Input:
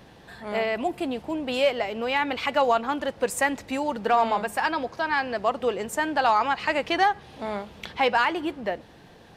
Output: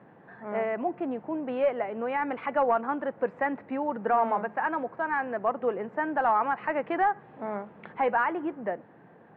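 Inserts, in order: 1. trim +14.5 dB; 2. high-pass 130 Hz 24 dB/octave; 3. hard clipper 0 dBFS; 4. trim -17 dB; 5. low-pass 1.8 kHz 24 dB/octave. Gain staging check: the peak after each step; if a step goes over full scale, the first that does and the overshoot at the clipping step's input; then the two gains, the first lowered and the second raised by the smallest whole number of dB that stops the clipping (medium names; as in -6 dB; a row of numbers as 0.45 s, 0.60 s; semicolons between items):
+2.5 dBFS, +4.5 dBFS, 0.0 dBFS, -17.0 dBFS, -15.5 dBFS; step 1, 4.5 dB; step 1 +9.5 dB, step 4 -12 dB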